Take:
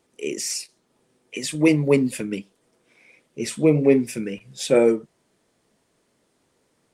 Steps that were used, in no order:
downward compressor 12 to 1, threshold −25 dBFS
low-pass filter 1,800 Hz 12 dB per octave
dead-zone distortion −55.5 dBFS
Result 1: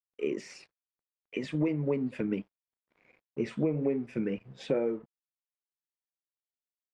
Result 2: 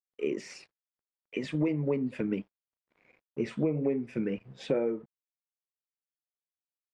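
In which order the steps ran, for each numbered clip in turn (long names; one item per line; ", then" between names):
downward compressor, then dead-zone distortion, then low-pass filter
dead-zone distortion, then low-pass filter, then downward compressor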